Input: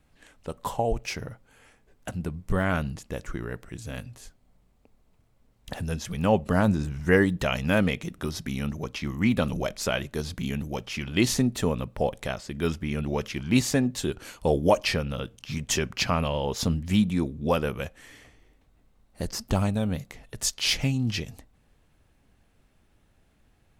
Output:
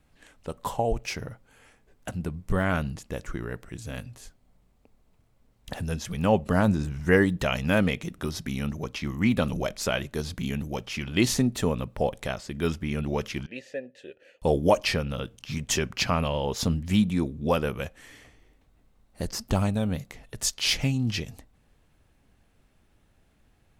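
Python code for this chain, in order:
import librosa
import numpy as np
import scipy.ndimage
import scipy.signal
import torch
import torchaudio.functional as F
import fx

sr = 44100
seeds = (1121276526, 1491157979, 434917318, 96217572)

y = fx.vowel_filter(x, sr, vowel='e', at=(13.46, 14.42))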